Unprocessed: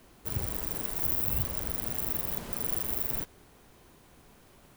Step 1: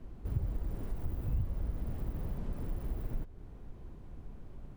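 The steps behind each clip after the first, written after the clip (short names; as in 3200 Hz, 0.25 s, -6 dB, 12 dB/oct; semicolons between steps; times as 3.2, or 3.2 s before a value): tilt -4.5 dB/oct; compressor 2:1, threshold -33 dBFS, peak gain reduction 11.5 dB; gain -4 dB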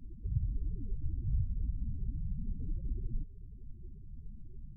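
low shelf 480 Hz -6.5 dB; loudest bins only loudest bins 8; gain +7 dB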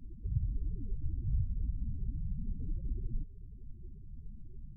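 nothing audible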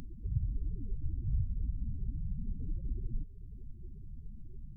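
upward compressor, threshold -40 dBFS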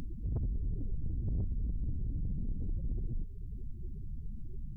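soft clip -35.5 dBFS, distortion -9 dB; gain +6 dB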